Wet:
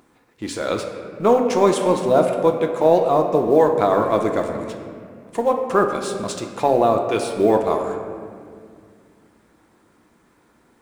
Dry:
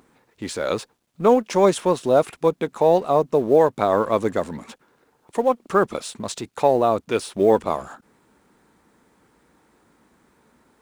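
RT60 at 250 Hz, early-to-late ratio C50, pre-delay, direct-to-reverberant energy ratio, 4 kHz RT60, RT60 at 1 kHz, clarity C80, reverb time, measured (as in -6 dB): 3.1 s, 5.5 dB, 3 ms, 3.0 dB, 1.3 s, 1.9 s, 6.5 dB, 2.1 s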